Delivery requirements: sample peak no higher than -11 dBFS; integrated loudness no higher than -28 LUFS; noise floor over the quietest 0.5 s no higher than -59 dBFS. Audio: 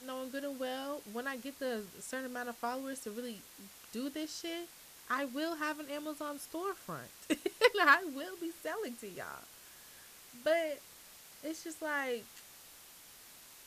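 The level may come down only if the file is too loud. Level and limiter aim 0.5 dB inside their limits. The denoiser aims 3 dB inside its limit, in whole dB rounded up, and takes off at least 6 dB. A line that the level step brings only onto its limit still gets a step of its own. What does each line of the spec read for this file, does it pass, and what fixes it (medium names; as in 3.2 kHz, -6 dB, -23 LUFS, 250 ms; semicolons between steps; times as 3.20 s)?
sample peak -12.5 dBFS: pass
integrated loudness -36.5 LUFS: pass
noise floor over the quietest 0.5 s -56 dBFS: fail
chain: noise reduction 6 dB, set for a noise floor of -56 dBFS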